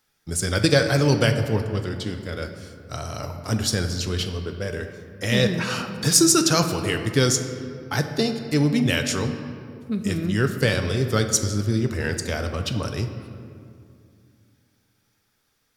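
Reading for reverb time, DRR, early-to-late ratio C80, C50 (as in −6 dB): 2.4 s, 6.0 dB, 9.0 dB, 8.0 dB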